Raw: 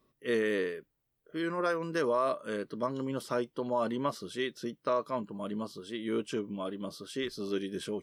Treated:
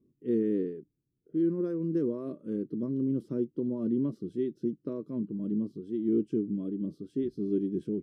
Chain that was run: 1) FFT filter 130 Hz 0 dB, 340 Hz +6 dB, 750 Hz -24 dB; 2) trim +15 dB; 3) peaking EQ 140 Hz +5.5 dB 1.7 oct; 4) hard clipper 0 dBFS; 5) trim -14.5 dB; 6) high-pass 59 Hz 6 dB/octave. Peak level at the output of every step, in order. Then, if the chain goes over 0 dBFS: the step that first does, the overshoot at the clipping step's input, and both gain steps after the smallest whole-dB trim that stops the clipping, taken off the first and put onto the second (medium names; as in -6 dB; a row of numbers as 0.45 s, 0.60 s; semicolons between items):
-20.5 dBFS, -5.5 dBFS, -3.0 dBFS, -3.0 dBFS, -17.5 dBFS, -18.0 dBFS; nothing clips